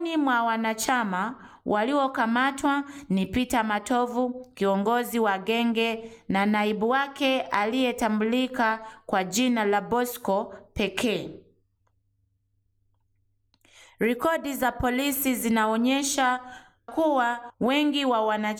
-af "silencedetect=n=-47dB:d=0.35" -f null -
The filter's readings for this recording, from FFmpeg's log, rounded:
silence_start: 11.43
silence_end: 13.54 | silence_duration: 2.11